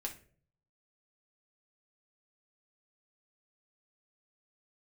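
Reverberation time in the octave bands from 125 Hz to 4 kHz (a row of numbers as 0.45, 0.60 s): 0.90, 0.60, 0.60, 0.35, 0.40, 0.30 s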